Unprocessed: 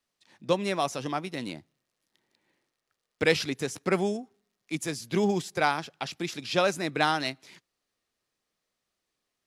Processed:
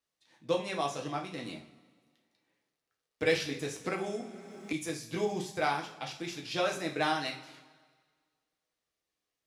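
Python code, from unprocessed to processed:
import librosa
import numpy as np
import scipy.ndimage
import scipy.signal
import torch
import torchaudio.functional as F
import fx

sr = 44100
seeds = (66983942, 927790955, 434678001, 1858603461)

y = fx.lowpass(x, sr, hz=11000.0, slope=12, at=(0.56, 1.42))
y = fx.rev_double_slope(y, sr, seeds[0], early_s=0.37, late_s=1.7, knee_db=-18, drr_db=-0.5)
y = fx.band_squash(y, sr, depth_pct=100, at=(3.84, 4.73))
y = y * 10.0 ** (-8.0 / 20.0)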